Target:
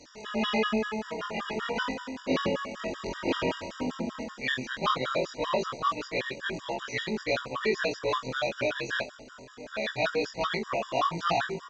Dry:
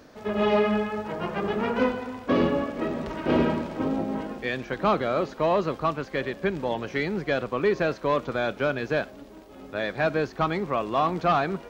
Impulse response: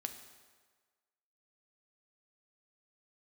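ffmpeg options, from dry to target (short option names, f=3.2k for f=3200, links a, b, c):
-filter_complex "[0:a]afftfilt=real='re':imag='-im':win_size=2048:overlap=0.75,crystalizer=i=7.5:c=0,asplit=2[a][b];[b]adelay=678,lowpass=f=980:p=1,volume=-15.5dB,asplit=2[c][d];[d]adelay=678,lowpass=f=980:p=1,volume=0.3,asplit=2[e][f];[f]adelay=678,lowpass=f=980:p=1,volume=0.3[g];[a][c][e][g]amix=inputs=4:normalize=0,aresample=16000,aresample=44100,afftfilt=real='re*gt(sin(2*PI*5.2*pts/sr)*(1-2*mod(floor(b*sr/1024/960),2)),0)':imag='im*gt(sin(2*PI*5.2*pts/sr)*(1-2*mod(floor(b*sr/1024/960),2)),0)':win_size=1024:overlap=0.75"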